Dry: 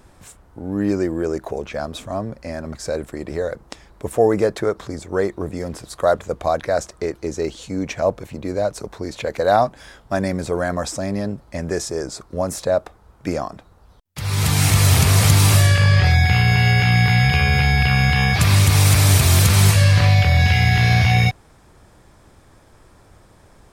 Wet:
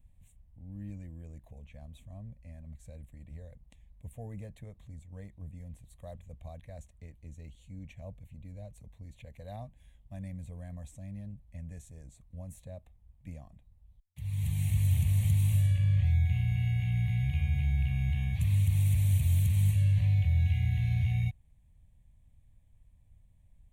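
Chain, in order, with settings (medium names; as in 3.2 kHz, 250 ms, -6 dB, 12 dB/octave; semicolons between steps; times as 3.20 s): amplifier tone stack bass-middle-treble 10-0-1; static phaser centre 1.4 kHz, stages 6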